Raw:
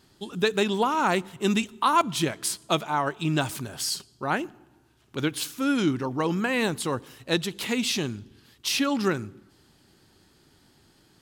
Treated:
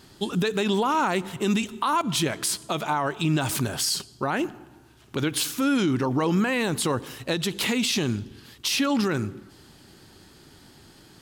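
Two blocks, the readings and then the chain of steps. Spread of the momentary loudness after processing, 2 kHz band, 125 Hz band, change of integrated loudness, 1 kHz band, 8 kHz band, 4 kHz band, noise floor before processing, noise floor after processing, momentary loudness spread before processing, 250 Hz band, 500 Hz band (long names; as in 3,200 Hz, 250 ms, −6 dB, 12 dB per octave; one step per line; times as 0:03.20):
7 LU, +0.5 dB, +3.5 dB, +1.0 dB, −0.5 dB, +3.5 dB, +2.0 dB, −61 dBFS, −53 dBFS, 9 LU, +2.0 dB, +0.5 dB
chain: downward compressor 3 to 1, threshold −25 dBFS, peak gain reduction 7.5 dB
brickwall limiter −24 dBFS, peak gain reduction 10 dB
level +8.5 dB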